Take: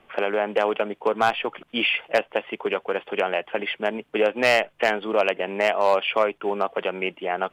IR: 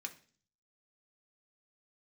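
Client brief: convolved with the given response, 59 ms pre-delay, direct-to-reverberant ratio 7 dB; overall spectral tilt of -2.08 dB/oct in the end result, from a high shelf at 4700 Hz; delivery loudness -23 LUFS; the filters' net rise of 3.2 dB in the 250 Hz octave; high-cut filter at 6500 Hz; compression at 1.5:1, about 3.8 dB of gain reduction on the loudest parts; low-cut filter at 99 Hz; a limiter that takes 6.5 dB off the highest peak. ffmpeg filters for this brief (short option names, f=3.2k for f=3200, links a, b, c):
-filter_complex "[0:a]highpass=99,lowpass=6.5k,equalizer=f=250:t=o:g=4.5,highshelf=f=4.7k:g=-8,acompressor=threshold=-25dB:ratio=1.5,alimiter=limit=-17.5dB:level=0:latency=1,asplit=2[a][b];[1:a]atrim=start_sample=2205,adelay=59[c];[b][c]afir=irnorm=-1:irlink=0,volume=-5dB[d];[a][d]amix=inputs=2:normalize=0,volume=5.5dB"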